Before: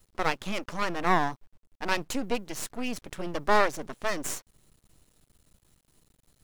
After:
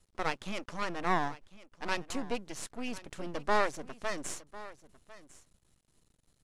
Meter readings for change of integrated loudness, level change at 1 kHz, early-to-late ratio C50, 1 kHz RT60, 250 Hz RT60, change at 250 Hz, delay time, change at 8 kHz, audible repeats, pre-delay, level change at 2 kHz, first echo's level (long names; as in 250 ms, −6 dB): −5.5 dB, −5.5 dB, no reverb audible, no reverb audible, no reverb audible, −5.5 dB, 1,050 ms, −5.5 dB, 1, no reverb audible, −5.5 dB, −18.0 dB